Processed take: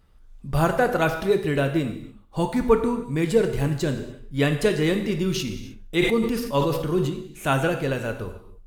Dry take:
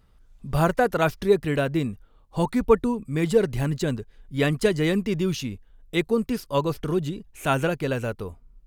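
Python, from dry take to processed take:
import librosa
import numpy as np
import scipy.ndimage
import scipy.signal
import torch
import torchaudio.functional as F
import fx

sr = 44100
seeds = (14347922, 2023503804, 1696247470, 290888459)

y = fx.echo_feedback(x, sr, ms=87, feedback_pct=49, wet_db=-23.0)
y = fx.rev_gated(y, sr, seeds[0], gate_ms=320, shape='falling', drr_db=5.5)
y = fx.sustainer(y, sr, db_per_s=51.0, at=(5.34, 7.09), fade=0.02)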